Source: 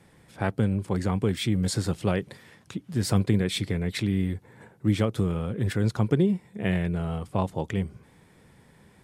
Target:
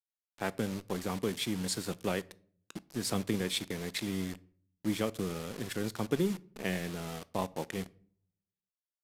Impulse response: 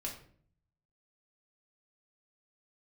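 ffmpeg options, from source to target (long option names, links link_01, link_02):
-filter_complex "[0:a]highpass=200,aeval=exprs='sgn(val(0))*max(abs(val(0))-0.00841,0)':channel_layout=same,acrusher=bits=6:mix=0:aa=0.000001,asplit=2[link_01][link_02];[1:a]atrim=start_sample=2205[link_03];[link_02][link_03]afir=irnorm=-1:irlink=0,volume=-14.5dB[link_04];[link_01][link_04]amix=inputs=2:normalize=0,aresample=32000,aresample=44100,adynamicequalizer=threshold=0.00501:dfrequency=2300:dqfactor=0.7:tfrequency=2300:tqfactor=0.7:attack=5:release=100:ratio=0.375:range=2:mode=boostabove:tftype=highshelf,volume=-5.5dB"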